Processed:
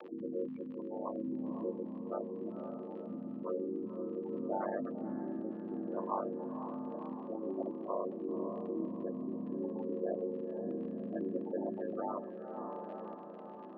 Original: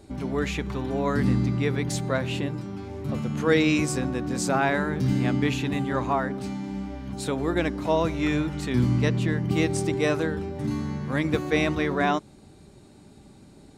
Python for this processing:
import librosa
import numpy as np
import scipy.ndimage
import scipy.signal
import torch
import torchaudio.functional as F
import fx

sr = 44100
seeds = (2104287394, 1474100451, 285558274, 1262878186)

p1 = fx.chord_vocoder(x, sr, chord='minor triad', root=49)
p2 = p1 + 10.0 ** (-22.0 / 20.0) * np.pad(p1, (int(117 * sr / 1000.0), 0))[:len(p1)]
p3 = fx.spec_gate(p2, sr, threshold_db=-15, keep='strong')
p4 = fx.dmg_crackle(p3, sr, seeds[0], per_s=73.0, level_db=-41.0)
p5 = p4 * np.sin(2.0 * np.pi * 49.0 * np.arange(len(p4)) / sr)
p6 = fx.cabinet(p5, sr, low_hz=340.0, low_slope=24, high_hz=2300.0, hz=(420.0, 740.0, 1100.0, 1500.0, 2200.0), db=(-8, -7, 4, -8, -9))
p7 = p6 + fx.echo_diffused(p6, sr, ms=514, feedback_pct=54, wet_db=-12.0, dry=0)
p8 = fx.tremolo_random(p7, sr, seeds[1], hz=3.5, depth_pct=55)
y = fx.env_flatten(p8, sr, amount_pct=50)